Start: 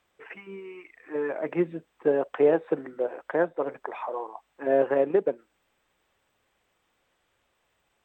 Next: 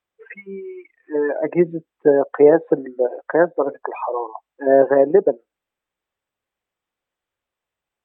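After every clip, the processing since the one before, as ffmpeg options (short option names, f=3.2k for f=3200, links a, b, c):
-af "afftdn=nr=22:nf=-35,volume=9dB"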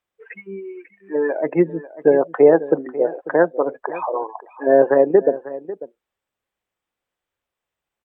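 -af "aecho=1:1:545:0.158"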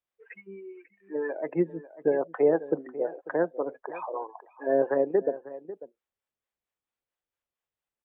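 -filter_complex "[0:a]acrossover=split=500[a][b];[a]aeval=exprs='val(0)*(1-0.5/2+0.5/2*cos(2*PI*4.4*n/s))':c=same[c];[b]aeval=exprs='val(0)*(1-0.5/2-0.5/2*cos(2*PI*4.4*n/s))':c=same[d];[c][d]amix=inputs=2:normalize=0,volume=-8dB"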